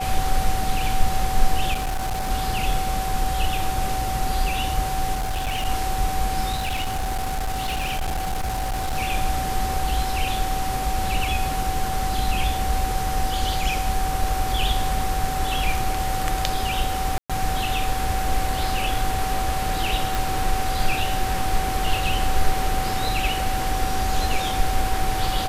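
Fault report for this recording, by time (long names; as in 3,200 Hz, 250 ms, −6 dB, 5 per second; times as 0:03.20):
whistle 760 Hz −26 dBFS
0:01.73–0:02.31: clipping −21.5 dBFS
0:05.14–0:05.66: clipping −21.5 dBFS
0:06.52–0:08.97: clipping −21.5 dBFS
0:17.18–0:17.30: drop-out 116 ms
0:20.15: click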